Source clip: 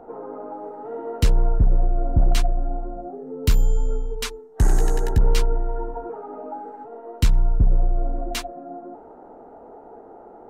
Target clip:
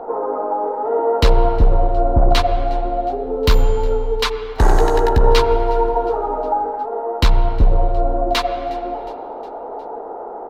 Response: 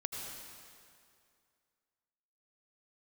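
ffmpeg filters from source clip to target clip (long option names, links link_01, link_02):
-filter_complex "[0:a]equalizer=frequency=125:width_type=o:width=1:gain=-5,equalizer=frequency=500:width_type=o:width=1:gain=8,equalizer=frequency=1000:width_type=o:width=1:gain=11,equalizer=frequency=2000:width_type=o:width=1:gain=3,equalizer=frequency=4000:width_type=o:width=1:gain=11,equalizer=frequency=8000:width_type=o:width=1:gain=-6,aecho=1:1:361|722|1083|1444:0.0631|0.0366|0.0212|0.0123,asplit=2[link_01][link_02];[1:a]atrim=start_sample=2205,lowpass=2200[link_03];[link_02][link_03]afir=irnorm=-1:irlink=0,volume=-6dB[link_04];[link_01][link_04]amix=inputs=2:normalize=0,volume=1dB"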